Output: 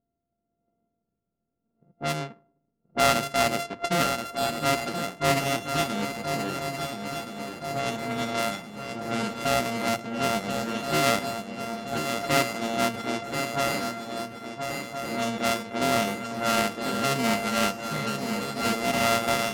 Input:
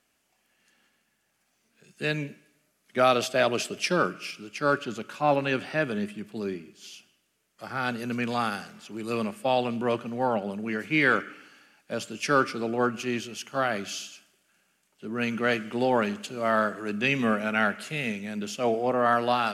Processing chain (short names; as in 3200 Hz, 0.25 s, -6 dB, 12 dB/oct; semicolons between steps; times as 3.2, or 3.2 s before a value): sample sorter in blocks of 64 samples; low-pass opened by the level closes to 370 Hz, open at -22.5 dBFS; on a send: swung echo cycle 1.371 s, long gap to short 3:1, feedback 54%, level -7 dB; on the sum: Doppler distortion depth 0.14 ms